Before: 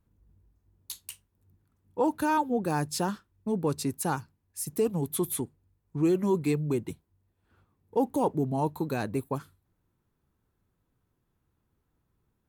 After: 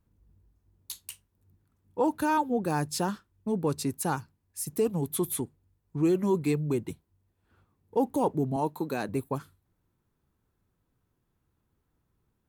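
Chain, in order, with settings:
0:08.56–0:09.09: high-pass filter 190 Hz 12 dB per octave

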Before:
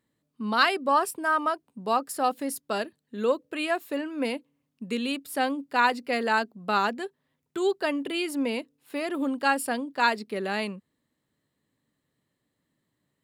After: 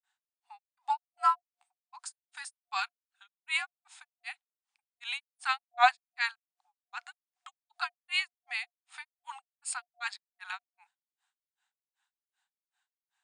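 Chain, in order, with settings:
granular cloud 207 ms, grains 2.6 per second, pitch spread up and down by 0 semitones
brick-wall band-pass 950–10,000 Hz
frequency shifter −240 Hz
level +4.5 dB

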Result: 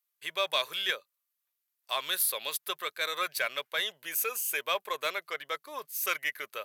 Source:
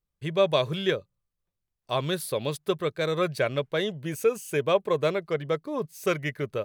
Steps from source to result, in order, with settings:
high-pass filter 1,300 Hz 12 dB per octave
parametric band 13,000 Hz +14 dB 0.46 octaves
in parallel at −5 dB: soft clipping −31 dBFS, distortion −9 dB

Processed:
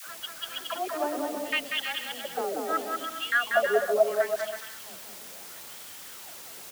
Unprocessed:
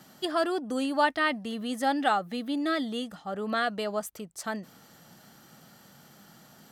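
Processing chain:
slices reordered back to front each 138 ms, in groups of 3
LFO wah 0.73 Hz 410–3,400 Hz, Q 8.2
on a send: bouncing-ball delay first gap 190 ms, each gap 0.7×, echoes 5
on the sum: automatic gain control gain up to 13 dB
background noise white −44 dBFS
high-pass filter 130 Hz 6 dB per octave
all-pass dispersion lows, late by 88 ms, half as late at 490 Hz

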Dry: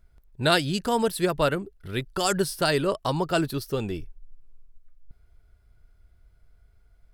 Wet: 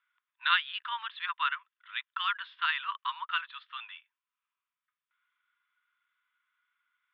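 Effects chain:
Chebyshev band-pass filter 1,000–3,600 Hz, order 5

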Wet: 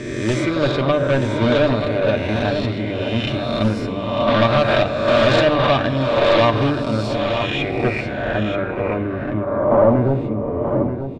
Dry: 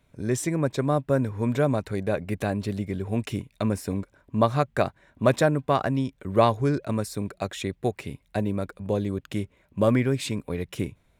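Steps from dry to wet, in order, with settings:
peak hold with a rise ahead of every peak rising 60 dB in 1.47 s
low-shelf EQ 100 Hz +4.5 dB
mains-hum notches 50/100/150/200 Hz
in parallel at −1 dB: output level in coarse steps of 21 dB
on the sum: gain into a clipping stage and back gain 15 dB
low-pass filter sweep 3,600 Hz → 590 Hz, 0:07.05–0:10.68
single-tap delay 931 ms −8.5 dB
on a send at −4 dB: convolution reverb RT60 1.2 s, pre-delay 3 ms

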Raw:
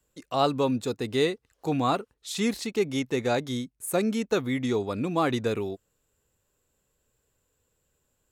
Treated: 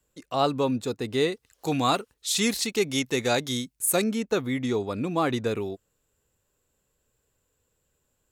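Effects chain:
0:01.32–0:04.04: high-shelf EQ 2,300 Hz +10.5 dB

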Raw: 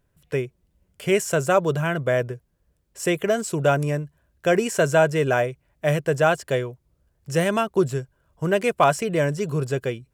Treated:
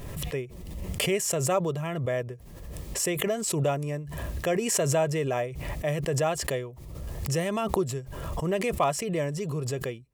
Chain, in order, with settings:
Butterworth band-reject 1,500 Hz, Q 5.5
background raised ahead of every attack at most 33 dB per second
level −7.5 dB

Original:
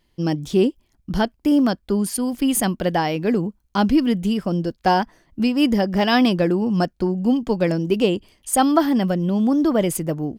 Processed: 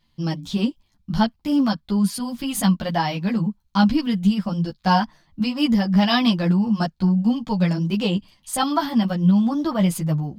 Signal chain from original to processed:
graphic EQ with 15 bands 160 Hz +10 dB, 400 Hz −11 dB, 1,000 Hz +5 dB, 4,000 Hz +8 dB, 10,000 Hz −3 dB
string-ensemble chorus

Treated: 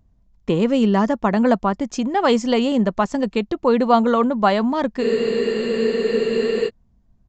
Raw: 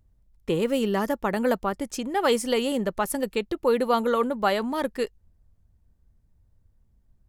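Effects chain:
hollow resonant body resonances 210/700/1,000 Hz, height 8 dB, ringing for 25 ms
downsampling to 16,000 Hz
frozen spectrum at 0:05.05, 1.63 s
level +3 dB

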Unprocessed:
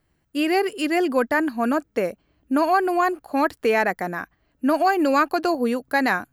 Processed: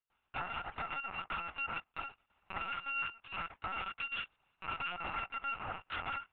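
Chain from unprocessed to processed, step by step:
samples in bit-reversed order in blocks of 256 samples
treble cut that deepens with the level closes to 1,600 Hz, closed at −19 dBFS
noise gate with hold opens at −59 dBFS
high-pass filter 210 Hz 6 dB per octave
low shelf with overshoot 540 Hz −13 dB, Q 1.5
linear-prediction vocoder at 8 kHz pitch kept
low-pass filter 2,600 Hz 12 dB per octave
brickwall limiter −32.5 dBFS, peak gain reduction 14.5 dB
level +3.5 dB

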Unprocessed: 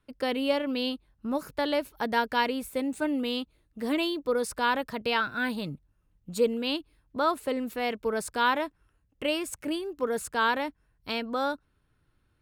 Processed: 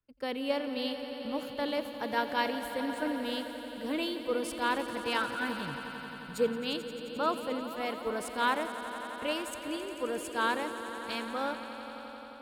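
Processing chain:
echo that builds up and dies away 88 ms, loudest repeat 5, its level −12.5 dB
multiband upward and downward expander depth 40%
level −5.5 dB

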